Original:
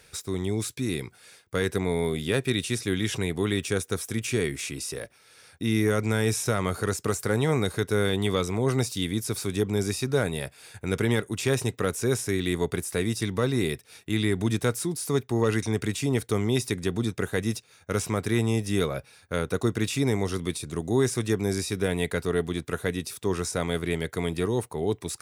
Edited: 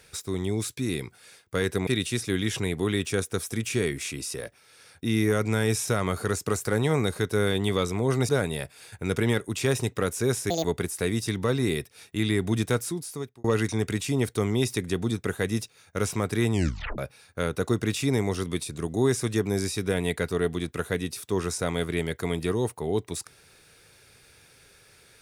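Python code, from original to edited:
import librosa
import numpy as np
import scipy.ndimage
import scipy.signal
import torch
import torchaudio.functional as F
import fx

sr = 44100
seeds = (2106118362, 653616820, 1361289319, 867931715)

y = fx.edit(x, sr, fx.cut(start_s=1.87, length_s=0.58),
    fx.cut(start_s=8.87, length_s=1.24),
    fx.speed_span(start_s=12.32, length_s=0.26, speed=1.83),
    fx.fade_out_span(start_s=14.71, length_s=0.67),
    fx.tape_stop(start_s=18.46, length_s=0.46), tone=tone)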